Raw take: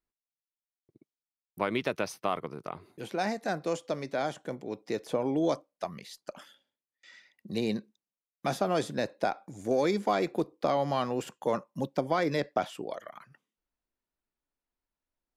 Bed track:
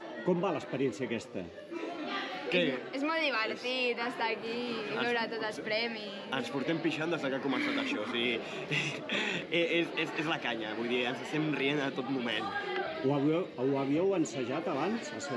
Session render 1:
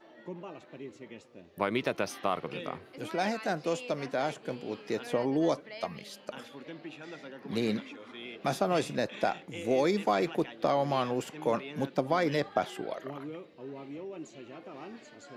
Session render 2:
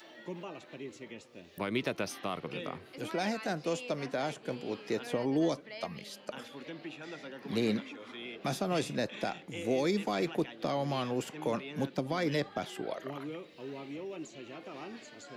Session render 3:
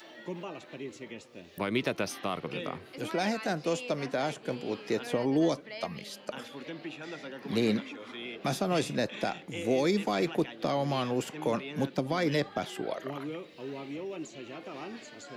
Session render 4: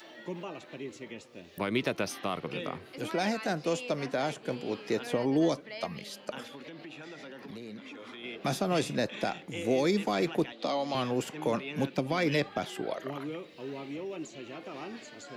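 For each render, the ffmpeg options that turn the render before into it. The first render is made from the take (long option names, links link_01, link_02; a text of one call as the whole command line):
ffmpeg -i in.wav -i bed.wav -filter_complex "[1:a]volume=-12.5dB[link_01];[0:a][link_01]amix=inputs=2:normalize=0" out.wav
ffmpeg -i in.wav -filter_complex "[0:a]acrossover=split=340|2100[link_01][link_02][link_03];[link_02]alimiter=level_in=2.5dB:limit=-24dB:level=0:latency=1:release=318,volume=-2.5dB[link_04];[link_03]acompressor=mode=upward:threshold=-48dB:ratio=2.5[link_05];[link_01][link_04][link_05]amix=inputs=3:normalize=0" out.wav
ffmpeg -i in.wav -af "volume=3dB" out.wav
ffmpeg -i in.wav -filter_complex "[0:a]asettb=1/sr,asplit=3[link_01][link_02][link_03];[link_01]atrim=end=6.554[link_04];[link_02]atrim=start=6.55:end=8.24,asetpts=PTS-STARTPTS,afade=type=in:duration=0.004:curve=qsin,afade=type=out:start_time=1.686:duration=0.004:curve=qsin,acompressor=threshold=-41dB:ratio=6:attack=3.2:release=140:knee=1:detection=peak[link_05];[link_03]atrim=start=8.236[link_06];[link_04][link_05]acrossfade=duration=0.004:curve1=hsin:curve2=qsin[link_07];[link_07][link_06]acrossfade=duration=0.004:curve1=qsin:curve2=hsin,asettb=1/sr,asplit=3[link_08][link_09][link_10];[link_08]atrim=end=10.524[link_11];[link_09]atrim=start=10.52:end=10.95,asetpts=PTS-STARTPTS,afade=type=in:duration=0.004:curve=qsin,afade=type=out:start_time=0.426:duration=0.004:curve=qsin,highpass=frequency=220:width=0.5412,highpass=frequency=220:width=1.3066,equalizer=frequency=370:width_type=q:width=4:gain=-9,equalizer=frequency=1600:width_type=q:width=4:gain=-8,equalizer=frequency=4000:width_type=q:width=4:gain=7,lowpass=frequency=9100:width=0.5412,lowpass=frequency=9100:width=1.3066[link_12];[link_10]atrim=start=10.946[link_13];[link_11][link_12]acrossfade=duration=0.004:curve1=hsin:curve2=qsin[link_14];[link_14][link_13]acrossfade=duration=0.004:curve1=qsin:curve2=hsin,asettb=1/sr,asplit=3[link_15][link_16][link_17];[link_15]atrim=end=11.674[link_18];[link_16]atrim=start=11.67:end=12.58,asetpts=PTS-STARTPTS,afade=type=in:duration=0.004:curve=qsin,afade=type=out:start_time=0.906:duration=0.004:curve=qsin,equalizer=frequency=2500:width=4:gain=7[link_19];[link_17]atrim=start=12.576[link_20];[link_18][link_19]acrossfade=duration=0.004:curve1=hsin:curve2=qsin[link_21];[link_21][link_20]acrossfade=duration=0.004:curve1=qsin:curve2=hsin" out.wav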